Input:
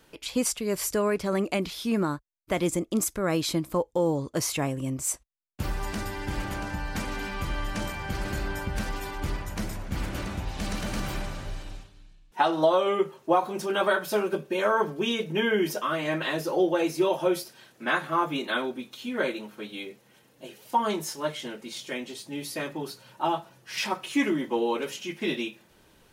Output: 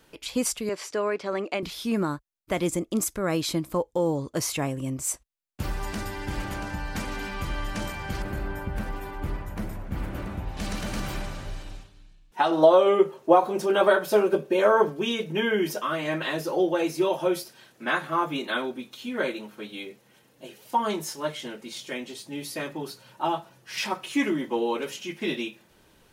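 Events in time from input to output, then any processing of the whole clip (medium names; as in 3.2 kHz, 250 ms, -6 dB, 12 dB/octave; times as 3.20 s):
0.69–1.63 s: band-pass 330–4700 Hz
8.22–10.57 s: peaking EQ 5.8 kHz -12.5 dB 2.2 oct
12.51–14.89 s: peaking EQ 490 Hz +6.5 dB 1.7 oct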